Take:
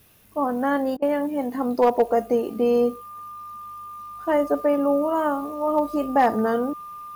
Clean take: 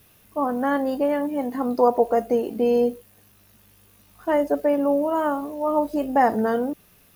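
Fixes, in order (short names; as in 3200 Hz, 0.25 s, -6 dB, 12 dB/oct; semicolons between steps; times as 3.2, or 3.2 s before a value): clip repair -10.5 dBFS; notch 1200 Hz, Q 30; interpolate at 0.97, 51 ms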